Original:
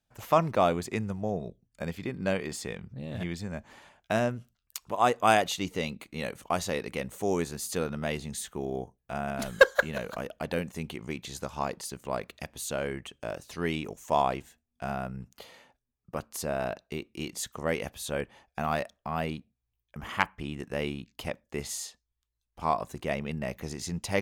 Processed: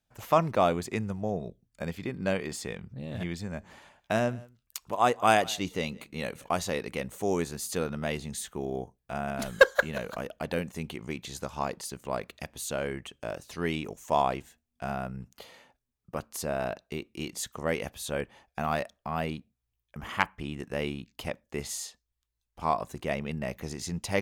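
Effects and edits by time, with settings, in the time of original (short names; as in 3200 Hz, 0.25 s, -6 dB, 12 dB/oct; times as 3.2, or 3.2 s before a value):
3.43–6.69 echo 0.174 s -23.5 dB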